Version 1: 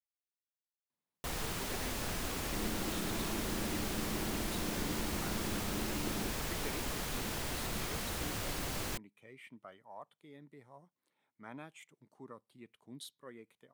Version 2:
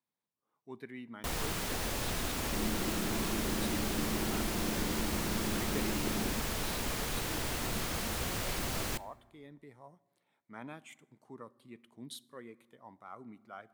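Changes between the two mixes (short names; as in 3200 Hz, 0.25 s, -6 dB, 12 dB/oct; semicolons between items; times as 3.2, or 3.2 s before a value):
speech: entry -0.90 s; reverb: on, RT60 1.2 s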